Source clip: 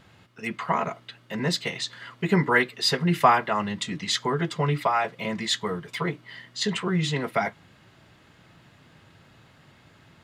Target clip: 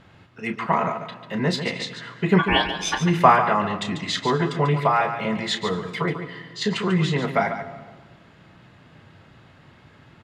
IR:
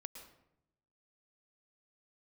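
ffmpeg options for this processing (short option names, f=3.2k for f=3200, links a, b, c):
-filter_complex "[0:a]lowpass=f=2.8k:p=1,asplit=3[a][b][c];[a]afade=t=out:st=2.38:d=0.02[d];[b]aeval=exprs='val(0)*sin(2*PI*1300*n/s)':c=same,afade=t=in:st=2.38:d=0.02,afade=t=out:st=2.99:d=0.02[e];[c]afade=t=in:st=2.99:d=0.02[f];[d][e][f]amix=inputs=3:normalize=0,aecho=1:1:32.07|142.9:0.316|0.355,asplit=2[g][h];[1:a]atrim=start_sample=2205,asetrate=22932,aresample=44100[i];[h][i]afir=irnorm=-1:irlink=0,volume=-8.5dB[j];[g][j]amix=inputs=2:normalize=0,volume=1.5dB"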